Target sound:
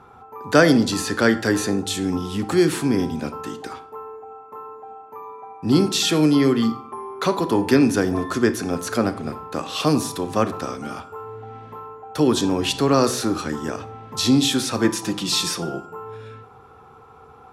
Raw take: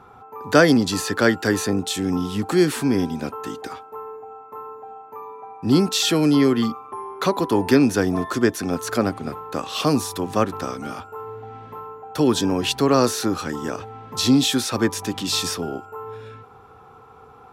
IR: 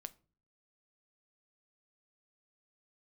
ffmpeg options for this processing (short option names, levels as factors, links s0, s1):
-filter_complex "[0:a]asettb=1/sr,asplit=3[s0][s1][s2];[s0]atrim=end=14.844[s3];[s1]atrim=start=14.84:end=15.89,asetpts=PTS-STARTPTS,afade=t=in:d=0.004:c=qsin,afade=t=out:st=1.046:d=0.004:c=qsin,aecho=1:1:5.8:0.64,atrim=end_sample=46305[s4];[s2]atrim=start=15.886[s5];[s3][s4]acrossfade=d=0.004:c1=hsin:c2=qsin[s6];[s6][s5]acrossfade=d=0.004:c1=qsin:c2=hsin[s7];[1:a]atrim=start_sample=2205,asetrate=22932,aresample=44100[s8];[s7][s8]afir=irnorm=-1:irlink=0,volume=1.19"